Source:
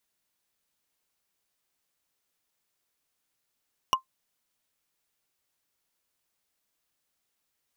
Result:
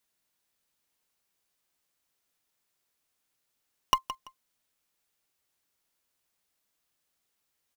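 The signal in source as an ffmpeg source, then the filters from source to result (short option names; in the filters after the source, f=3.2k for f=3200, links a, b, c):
-f lavfi -i "aevalsrc='0.188*pow(10,-3*t/0.11)*sin(2*PI*1050*t)+0.126*pow(10,-3*t/0.033)*sin(2*PI*2894.8*t)+0.0841*pow(10,-3*t/0.015)*sin(2*PI*5674.2*t)+0.0562*pow(10,-3*t/0.008)*sin(2*PI*9379.6*t)+0.0376*pow(10,-3*t/0.005)*sin(2*PI*14007*t)':d=0.45:s=44100"
-filter_complex "[0:a]asplit=2[a][b];[b]acrusher=bits=4:dc=4:mix=0:aa=0.000001,volume=-8.5dB[c];[a][c]amix=inputs=2:normalize=0,aecho=1:1:168|336:0.224|0.047"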